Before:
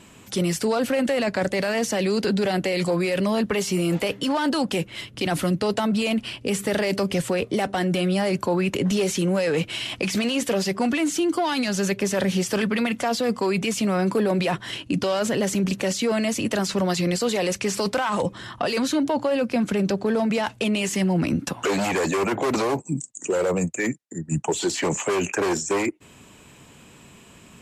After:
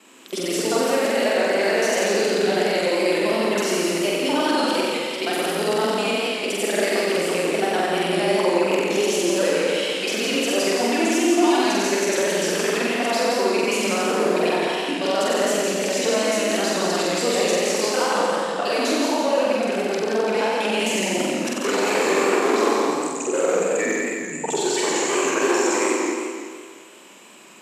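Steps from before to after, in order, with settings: local time reversal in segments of 65 ms; HPF 270 Hz 24 dB/oct; flutter echo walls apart 7.9 m, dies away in 1.5 s; warbling echo 0.169 s, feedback 46%, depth 105 cents, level -4 dB; gain -1.5 dB

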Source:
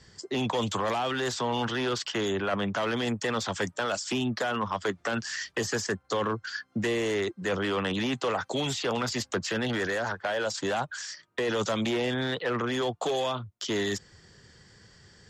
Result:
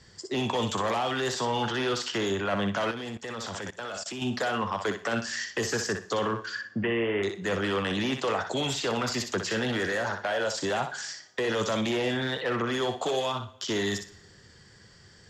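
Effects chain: 6.55–7.23 steep low-pass 3200 Hz 96 dB/oct; thinning echo 61 ms, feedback 23%, high-pass 510 Hz, level -6 dB; two-slope reverb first 0.74 s, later 2.1 s, from -18 dB, DRR 15.5 dB; 2.91–4.22 level quantiser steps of 18 dB

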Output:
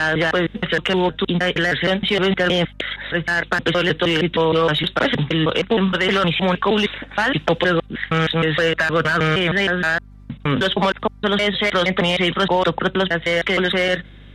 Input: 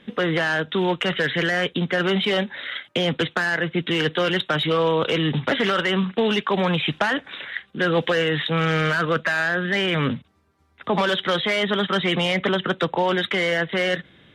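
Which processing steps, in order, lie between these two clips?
slices in reverse order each 0.156 s, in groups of 4; hum 50 Hz, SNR 23 dB; gain +3.5 dB

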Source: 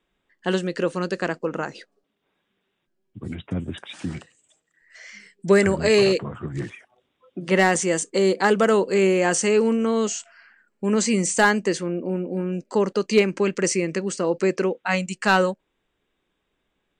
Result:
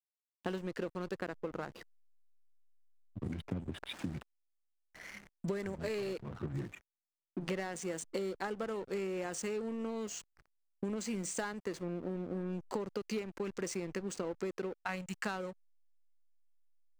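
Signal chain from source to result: compressor 16:1, threshold -31 dBFS, peak gain reduction 20 dB; backlash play -37.5 dBFS; gain -2.5 dB

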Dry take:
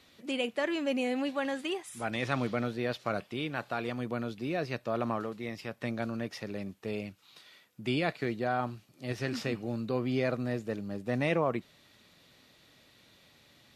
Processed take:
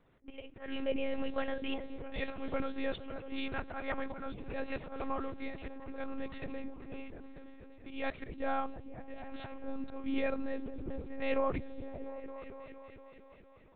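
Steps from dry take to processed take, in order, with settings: auto swell 0.217 s; spectral gain 3.68–4.32, 590–2300 Hz +9 dB; low-pass opened by the level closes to 1100 Hz, open at -32 dBFS; repeats that get brighter 0.231 s, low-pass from 200 Hz, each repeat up 1 oct, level -6 dB; monotone LPC vocoder at 8 kHz 270 Hz; gain -2 dB

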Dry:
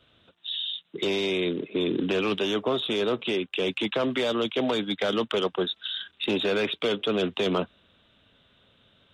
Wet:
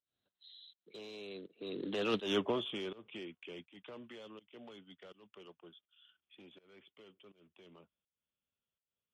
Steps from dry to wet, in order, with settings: Doppler pass-by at 2.28, 27 m/s, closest 3.2 m; pump 82 bpm, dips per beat 1, -21 dB, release 0.285 s; gain -1.5 dB

